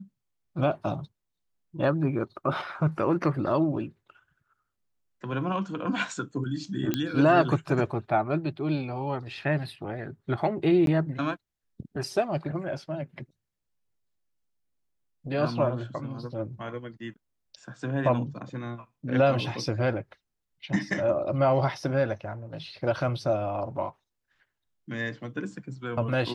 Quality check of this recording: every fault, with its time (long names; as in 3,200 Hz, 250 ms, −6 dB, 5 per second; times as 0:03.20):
0:06.94: click −12 dBFS
0:10.86–0:10.87: drop-out 12 ms